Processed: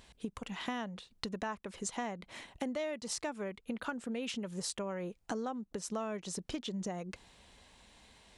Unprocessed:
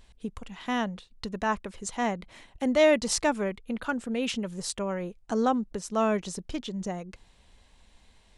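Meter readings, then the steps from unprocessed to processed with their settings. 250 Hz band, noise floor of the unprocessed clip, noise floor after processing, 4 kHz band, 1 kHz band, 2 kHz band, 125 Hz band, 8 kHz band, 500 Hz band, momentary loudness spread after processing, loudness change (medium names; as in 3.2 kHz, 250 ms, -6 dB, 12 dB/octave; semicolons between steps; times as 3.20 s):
-9.5 dB, -60 dBFS, -70 dBFS, -7.0 dB, -11.0 dB, -10.5 dB, -7.0 dB, -6.5 dB, -12.0 dB, 16 LU, -10.5 dB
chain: high-pass 130 Hz 6 dB/octave; compression 10:1, threshold -38 dBFS, peak gain reduction 21 dB; trim +3 dB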